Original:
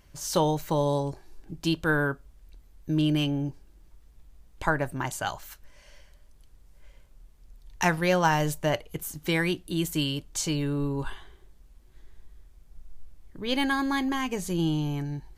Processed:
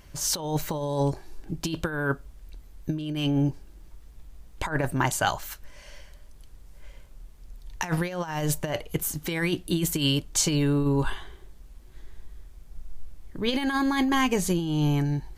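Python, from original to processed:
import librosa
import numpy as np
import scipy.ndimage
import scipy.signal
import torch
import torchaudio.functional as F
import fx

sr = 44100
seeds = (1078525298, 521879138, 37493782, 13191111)

y = fx.over_compress(x, sr, threshold_db=-28.0, ratio=-0.5)
y = F.gain(torch.from_numpy(y), 4.0).numpy()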